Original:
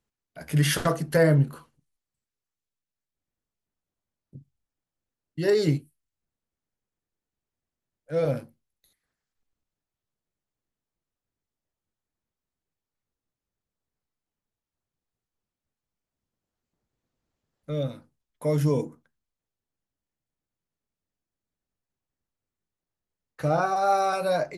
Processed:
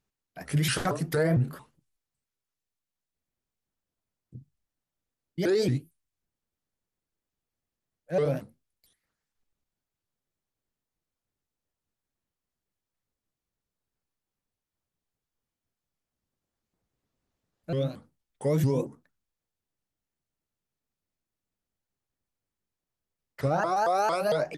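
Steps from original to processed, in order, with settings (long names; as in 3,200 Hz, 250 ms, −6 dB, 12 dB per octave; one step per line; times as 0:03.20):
brickwall limiter −17.5 dBFS, peak gain reduction 7.5 dB
pitch modulation by a square or saw wave saw up 4.4 Hz, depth 250 cents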